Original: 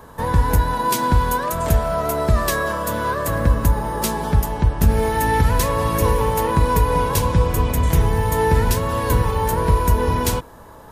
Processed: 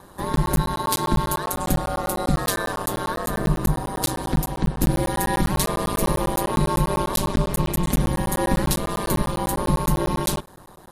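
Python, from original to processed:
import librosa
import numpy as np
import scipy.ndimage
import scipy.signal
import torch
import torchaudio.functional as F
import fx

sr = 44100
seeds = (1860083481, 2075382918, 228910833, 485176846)

y = fx.graphic_eq_15(x, sr, hz=(250, 4000, 10000), db=(6, 7, 8))
y = y * np.sin(2.0 * np.pi * 96.0 * np.arange(len(y)) / sr)
y = fx.buffer_crackle(y, sr, first_s=0.36, period_s=0.1, block=512, kind='zero')
y = y * 10.0 ** (-2.5 / 20.0)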